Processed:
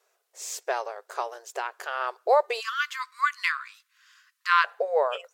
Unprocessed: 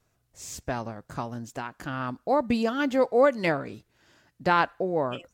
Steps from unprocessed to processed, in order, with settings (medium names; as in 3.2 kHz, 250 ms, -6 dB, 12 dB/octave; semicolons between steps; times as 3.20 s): brick-wall FIR high-pass 370 Hz, from 2.59 s 1 kHz, from 4.64 s 410 Hz; trim +4 dB